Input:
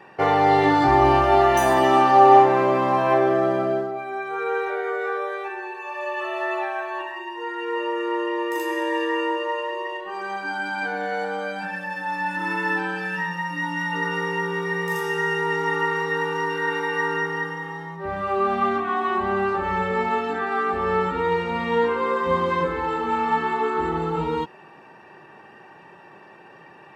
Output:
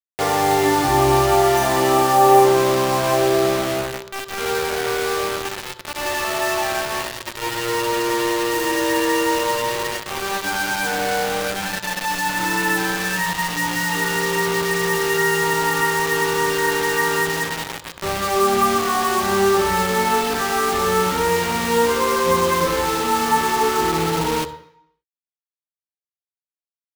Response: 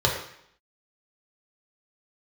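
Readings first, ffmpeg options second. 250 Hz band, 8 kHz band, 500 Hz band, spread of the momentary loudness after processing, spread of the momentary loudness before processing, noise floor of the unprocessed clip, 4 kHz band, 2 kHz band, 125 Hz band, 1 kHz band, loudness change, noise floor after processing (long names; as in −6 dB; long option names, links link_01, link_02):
+3.0 dB, +19.5 dB, +3.5 dB, 8 LU, 12 LU, −47 dBFS, +11.5 dB, +3.5 dB, +4.0 dB, +1.5 dB, +3.5 dB, below −85 dBFS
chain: -filter_complex "[0:a]dynaudnorm=framelen=330:gausssize=13:maxgain=4.5dB,acrusher=bits=3:mix=0:aa=0.000001,asplit=2[link_01][link_02];[1:a]atrim=start_sample=2205,adelay=62[link_03];[link_02][link_03]afir=irnorm=-1:irlink=0,volume=-27dB[link_04];[link_01][link_04]amix=inputs=2:normalize=0,volume=-1dB"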